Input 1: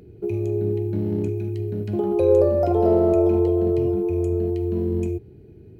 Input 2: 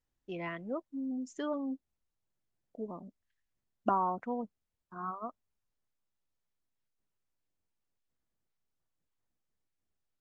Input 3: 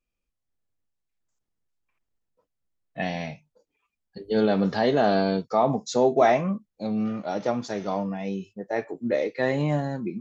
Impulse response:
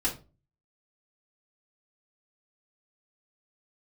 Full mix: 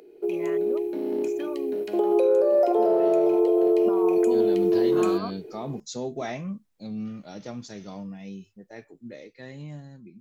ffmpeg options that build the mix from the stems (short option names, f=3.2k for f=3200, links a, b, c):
-filter_complex "[0:a]highpass=f=380:w=0.5412,highpass=f=380:w=1.3066,acontrast=33,equalizer=f=1.5k:t=o:w=0.77:g=-3,volume=-2.5dB[a];[1:a]acompressor=threshold=-35dB:ratio=6,volume=0dB[b];[2:a]equalizer=f=790:t=o:w=2.9:g=-14,volume=-10dB[c];[a][b][c]amix=inputs=3:normalize=0,dynaudnorm=f=330:g=11:m=8.5dB,alimiter=limit=-13dB:level=0:latency=1:release=315"